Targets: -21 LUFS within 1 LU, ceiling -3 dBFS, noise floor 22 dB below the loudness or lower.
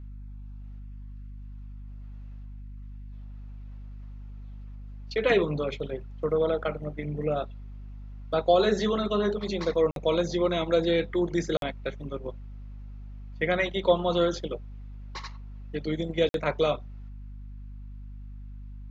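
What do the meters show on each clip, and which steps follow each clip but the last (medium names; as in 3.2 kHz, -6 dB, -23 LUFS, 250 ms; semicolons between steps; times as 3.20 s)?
dropouts 3; longest dropout 52 ms; hum 50 Hz; highest harmonic 250 Hz; hum level -38 dBFS; loudness -27.5 LUFS; peak level -9.5 dBFS; loudness target -21.0 LUFS
-> interpolate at 9.91/11.57/16.29 s, 52 ms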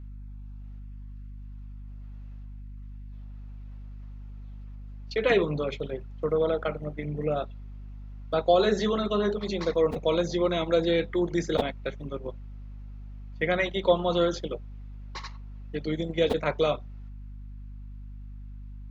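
dropouts 0; hum 50 Hz; highest harmonic 250 Hz; hum level -38 dBFS
-> de-hum 50 Hz, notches 5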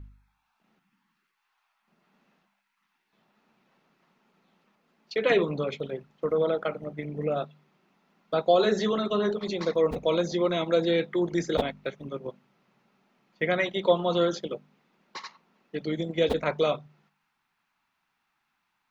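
hum not found; loudness -27.5 LUFS; peak level -10.0 dBFS; loudness target -21.0 LUFS
-> trim +6.5 dB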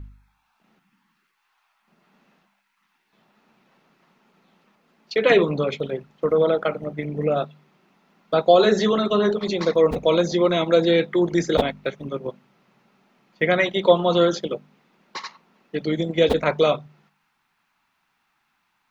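loudness -21.0 LUFS; peak level -3.5 dBFS; noise floor -71 dBFS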